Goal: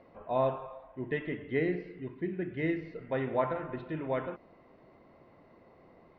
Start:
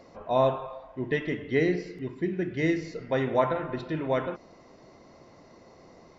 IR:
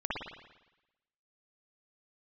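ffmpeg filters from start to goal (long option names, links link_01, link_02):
-af "lowpass=frequency=3100:width=0.5412,lowpass=frequency=3100:width=1.3066,volume=-5.5dB"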